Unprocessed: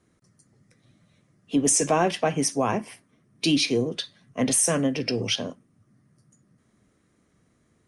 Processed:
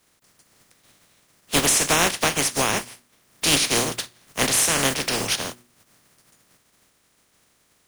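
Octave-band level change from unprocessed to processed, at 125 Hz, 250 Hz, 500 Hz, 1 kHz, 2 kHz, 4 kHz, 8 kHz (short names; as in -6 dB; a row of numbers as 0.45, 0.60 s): -0.5, -4.5, -1.5, +2.5, +9.0, +6.5, +4.5 dB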